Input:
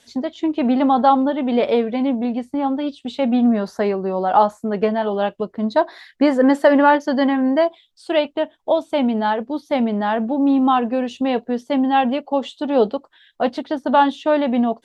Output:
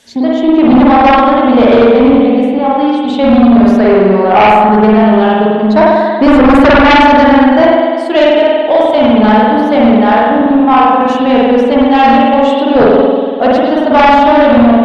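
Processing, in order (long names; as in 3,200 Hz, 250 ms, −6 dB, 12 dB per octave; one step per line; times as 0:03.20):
0:10.41–0:11.01: band-pass filter 390–2,400 Hz
spring reverb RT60 1.7 s, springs 47 ms, chirp 65 ms, DRR −6 dB
sine wavefolder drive 10 dB, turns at 5 dBFS
level −6.5 dB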